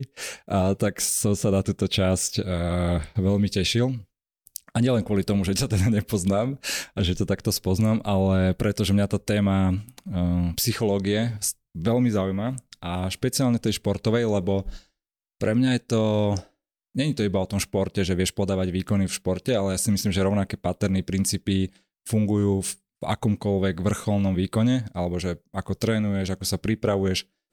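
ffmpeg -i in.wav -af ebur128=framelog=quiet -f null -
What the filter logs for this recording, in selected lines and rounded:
Integrated loudness:
  I:         -24.5 LUFS
  Threshold: -34.7 LUFS
Loudness range:
  LRA:         2.0 LU
  Threshold: -44.7 LUFS
  LRA low:   -25.5 LUFS
  LRA high:  -23.5 LUFS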